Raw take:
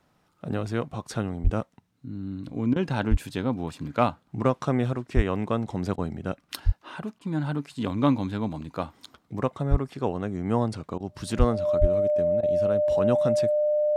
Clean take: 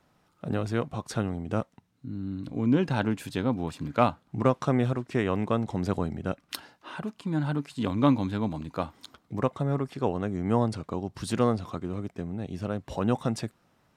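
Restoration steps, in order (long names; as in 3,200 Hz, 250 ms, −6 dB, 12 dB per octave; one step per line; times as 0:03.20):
notch filter 600 Hz, Q 30
high-pass at the plosives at 0:01.43/0:03.10/0:05.15/0:06.65/0:09.70/0:11.38/0:11.80
repair the gap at 0:02.74/0:05.96/0:07.19/0:10.98/0:12.41, 19 ms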